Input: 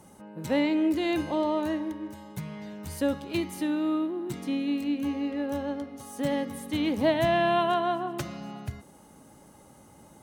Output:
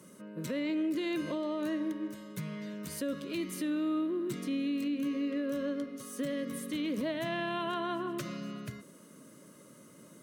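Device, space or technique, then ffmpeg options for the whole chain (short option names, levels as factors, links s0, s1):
PA system with an anti-feedback notch: -af "highpass=f=140:w=0.5412,highpass=f=140:w=1.3066,asuperstop=centerf=800:order=4:qfactor=2.2,alimiter=level_in=1.33:limit=0.0631:level=0:latency=1:release=79,volume=0.75"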